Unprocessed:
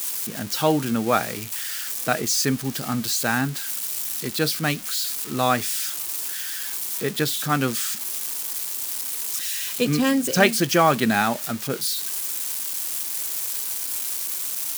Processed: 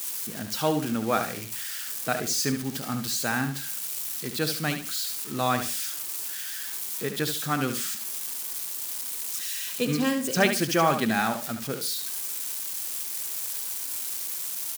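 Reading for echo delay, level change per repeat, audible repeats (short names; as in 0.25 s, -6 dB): 72 ms, -12.0 dB, 3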